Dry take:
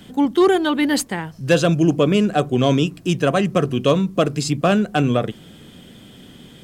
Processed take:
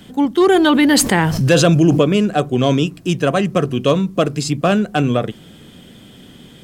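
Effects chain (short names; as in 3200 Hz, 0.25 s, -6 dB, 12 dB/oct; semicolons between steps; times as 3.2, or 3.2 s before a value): 0.49–2.02 fast leveller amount 70%; gain +1.5 dB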